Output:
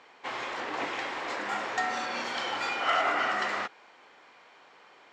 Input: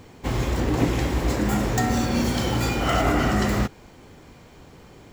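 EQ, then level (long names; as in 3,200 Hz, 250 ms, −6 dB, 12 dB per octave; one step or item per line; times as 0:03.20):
high-pass filter 980 Hz 12 dB per octave
high-frequency loss of the air 110 metres
high-shelf EQ 4,900 Hz −10 dB
+2.5 dB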